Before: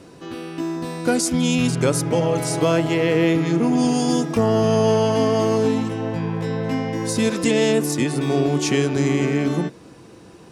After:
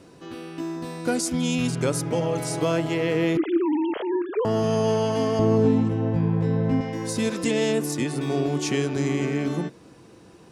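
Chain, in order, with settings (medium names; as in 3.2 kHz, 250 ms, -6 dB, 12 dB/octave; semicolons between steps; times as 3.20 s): 3.37–4.45 s: formants replaced by sine waves; 5.39–6.81 s: tilt EQ -3 dB/octave; trim -5 dB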